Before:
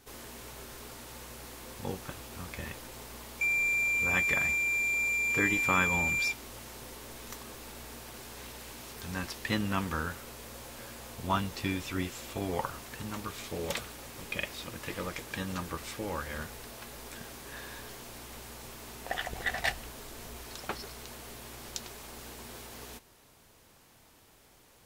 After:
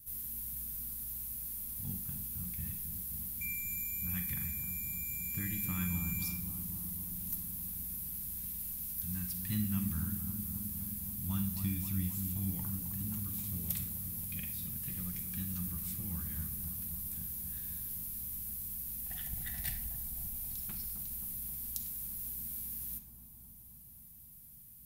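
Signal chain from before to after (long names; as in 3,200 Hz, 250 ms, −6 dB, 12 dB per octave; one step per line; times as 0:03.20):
drawn EQ curve 180 Hz 0 dB, 460 Hz −29 dB, 7,100 Hz −8 dB, 12,000 Hz +14 dB
bucket-brigade delay 264 ms, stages 2,048, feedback 80%, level −7.5 dB
on a send at −7.5 dB: convolution reverb RT60 0.50 s, pre-delay 37 ms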